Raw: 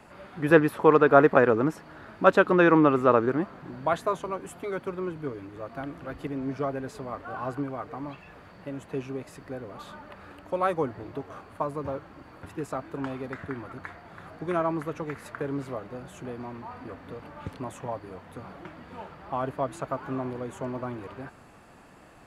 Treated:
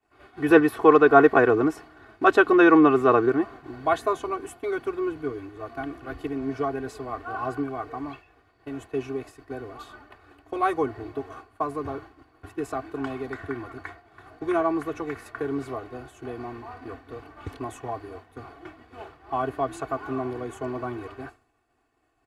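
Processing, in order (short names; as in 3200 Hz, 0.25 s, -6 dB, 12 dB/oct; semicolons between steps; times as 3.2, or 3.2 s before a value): expander -39 dBFS; comb 2.7 ms, depth 90%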